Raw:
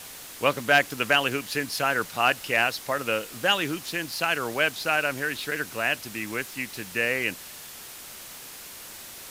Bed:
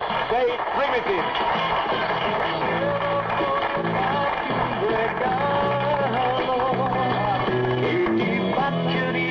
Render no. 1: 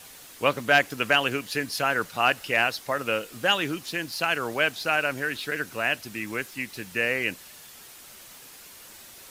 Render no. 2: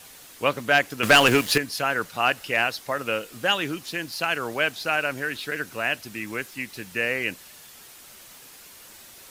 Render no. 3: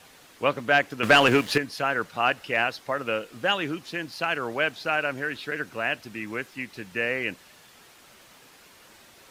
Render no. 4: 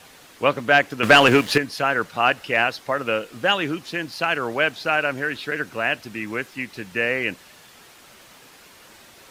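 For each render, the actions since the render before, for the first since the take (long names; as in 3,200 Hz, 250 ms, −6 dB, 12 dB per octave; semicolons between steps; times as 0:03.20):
broadband denoise 6 dB, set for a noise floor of −43 dBFS
0:01.03–0:01.58: leveller curve on the samples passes 3
low-pass filter 2,700 Hz 6 dB per octave; low-shelf EQ 61 Hz −7 dB
level +4.5 dB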